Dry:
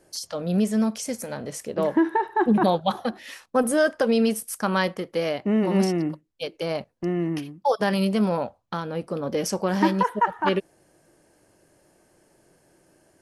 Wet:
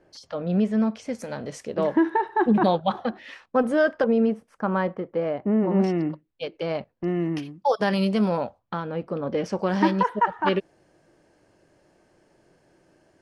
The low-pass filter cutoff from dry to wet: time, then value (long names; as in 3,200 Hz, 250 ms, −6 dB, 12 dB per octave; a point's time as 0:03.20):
2,700 Hz
from 0:01.15 5,400 Hz
from 0:02.76 3,100 Hz
from 0:04.04 1,300 Hz
from 0:05.84 3,200 Hz
from 0:07.08 6,700 Hz
from 0:08.59 2,800 Hz
from 0:09.59 5,100 Hz